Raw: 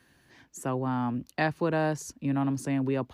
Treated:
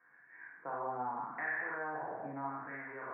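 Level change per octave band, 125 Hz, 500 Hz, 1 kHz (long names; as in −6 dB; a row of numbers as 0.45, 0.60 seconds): −23.5, −12.5, −4.5 decibels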